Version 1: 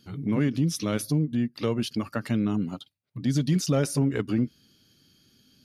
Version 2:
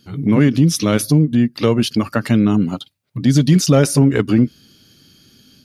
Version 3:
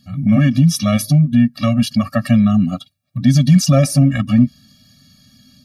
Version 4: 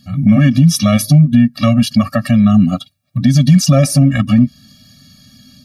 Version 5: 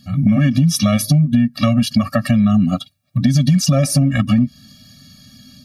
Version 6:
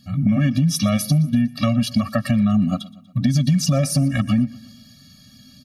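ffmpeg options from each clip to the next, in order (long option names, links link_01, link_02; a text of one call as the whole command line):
ffmpeg -i in.wav -af "dynaudnorm=framelen=100:gausssize=3:maxgain=6dB,volume=5.5dB" out.wav
ffmpeg -i in.wav -af "afftfilt=real='re*eq(mod(floor(b*sr/1024/270),2),0)':imag='im*eq(mod(floor(b*sr/1024/270),2),0)':win_size=1024:overlap=0.75,volume=2.5dB" out.wav
ffmpeg -i in.wav -af "alimiter=limit=-7dB:level=0:latency=1:release=251,volume=5.5dB" out.wav
ffmpeg -i in.wav -af "acompressor=threshold=-10dB:ratio=6" out.wav
ffmpeg -i in.wav -af "aecho=1:1:120|240|360|480:0.0841|0.048|0.0273|0.0156,volume=-4dB" out.wav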